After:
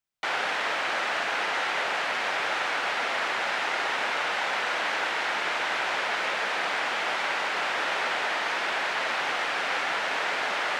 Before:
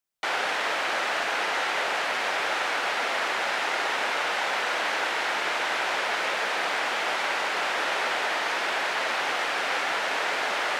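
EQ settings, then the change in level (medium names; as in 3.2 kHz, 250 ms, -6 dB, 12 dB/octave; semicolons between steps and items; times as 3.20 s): tone controls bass +11 dB, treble -3 dB; bass shelf 340 Hz -9.5 dB; peaking EQ 12 kHz -6 dB 0.5 oct; 0.0 dB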